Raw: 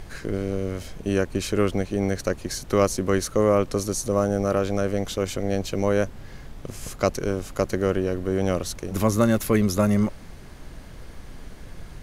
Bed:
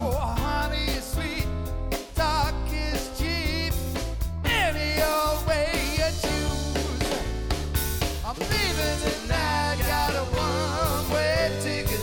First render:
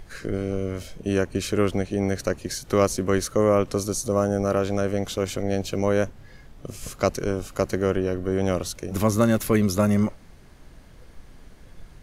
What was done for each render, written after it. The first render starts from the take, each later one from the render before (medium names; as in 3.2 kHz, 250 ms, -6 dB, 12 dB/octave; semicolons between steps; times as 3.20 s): noise print and reduce 7 dB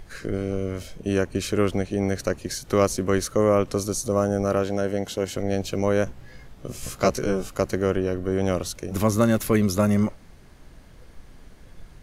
4.64–5.36 s: comb of notches 1.2 kHz; 6.05–7.50 s: doubling 16 ms -2 dB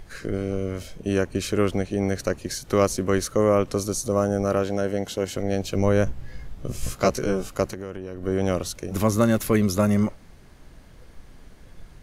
5.75–6.93 s: bass shelf 120 Hz +10.5 dB; 7.68–8.23 s: compression 5:1, threshold -30 dBFS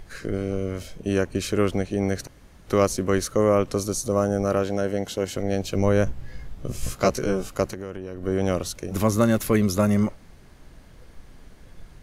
2.27–2.67 s: room tone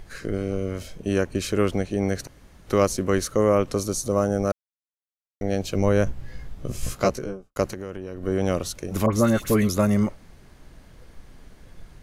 4.52–5.41 s: mute; 6.96–7.56 s: studio fade out; 9.06–9.69 s: phase dispersion highs, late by 68 ms, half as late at 1.7 kHz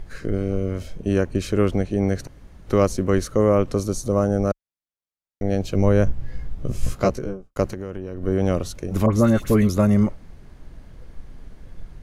tilt EQ -1.5 dB/octave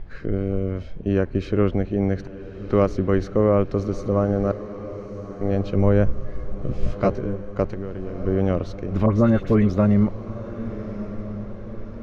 distance through air 240 m; echo that smears into a reverb 1284 ms, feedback 55%, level -13.5 dB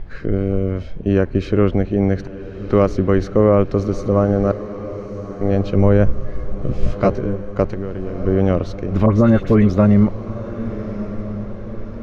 trim +5 dB; peak limiter -3 dBFS, peak gain reduction 2 dB